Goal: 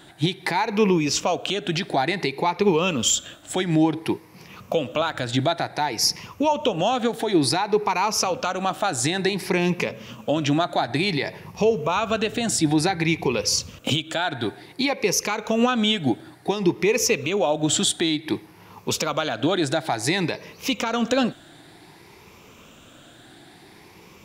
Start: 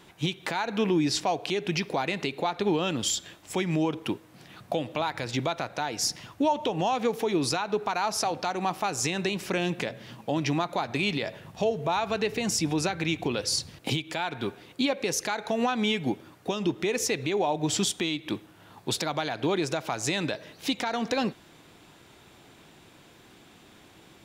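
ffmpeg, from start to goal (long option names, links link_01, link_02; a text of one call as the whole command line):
ffmpeg -i in.wav -af "afftfilt=real='re*pow(10,9/40*sin(2*PI*(0.82*log(max(b,1)*sr/1024/100)/log(2)-(0.56)*(pts-256)/sr)))':imag='im*pow(10,9/40*sin(2*PI*(0.82*log(max(b,1)*sr/1024/100)/log(2)-(0.56)*(pts-256)/sr)))':win_size=1024:overlap=0.75,volume=4.5dB" out.wav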